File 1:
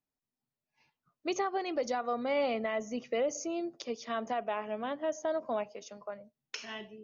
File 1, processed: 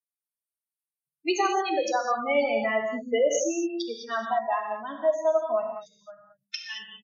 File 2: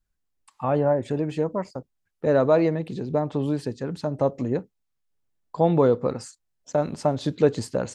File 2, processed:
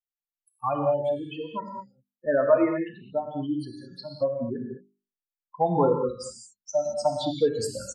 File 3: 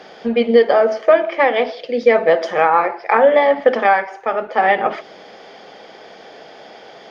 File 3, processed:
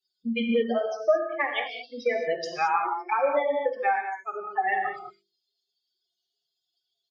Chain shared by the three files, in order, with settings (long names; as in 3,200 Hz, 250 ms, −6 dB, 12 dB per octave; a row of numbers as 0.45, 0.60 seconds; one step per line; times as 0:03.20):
spectral dynamics exaggerated over time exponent 3
mains-hum notches 50/100/150/200/250/300/350/400 Hz
gate on every frequency bin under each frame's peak −30 dB strong
low-shelf EQ 180 Hz −9.5 dB
downward compressor 2.5 to 1, threshold −29 dBFS
reverb whose tail is shaped and stops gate 240 ms flat, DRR 2.5 dB
downsampling to 32,000 Hz
loudness normalisation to −27 LKFS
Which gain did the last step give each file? +12.5, +8.0, +2.5 decibels